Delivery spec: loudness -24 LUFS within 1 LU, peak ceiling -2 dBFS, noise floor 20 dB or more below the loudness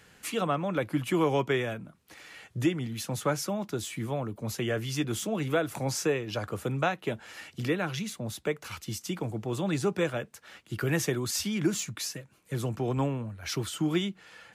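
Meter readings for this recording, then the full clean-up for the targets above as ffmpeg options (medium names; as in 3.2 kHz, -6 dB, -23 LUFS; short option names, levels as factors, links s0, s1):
loudness -31.0 LUFS; peak level -15.5 dBFS; loudness target -24.0 LUFS
-> -af "volume=2.24"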